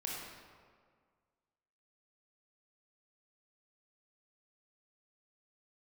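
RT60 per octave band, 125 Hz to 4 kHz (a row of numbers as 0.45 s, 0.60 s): 1.9 s, 1.9 s, 1.9 s, 1.8 s, 1.5 s, 1.1 s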